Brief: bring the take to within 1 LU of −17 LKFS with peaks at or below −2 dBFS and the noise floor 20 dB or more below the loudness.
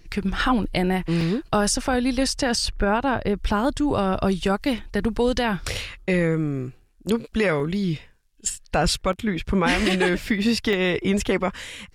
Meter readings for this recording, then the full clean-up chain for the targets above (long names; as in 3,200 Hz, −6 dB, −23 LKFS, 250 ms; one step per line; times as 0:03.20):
number of dropouts 5; longest dropout 1.7 ms; integrated loudness −23.5 LKFS; sample peak −11.0 dBFS; target loudness −17.0 LKFS
→ repair the gap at 0:00.64/0:01.21/0:07.60/0:09.13/0:10.73, 1.7 ms
level +6.5 dB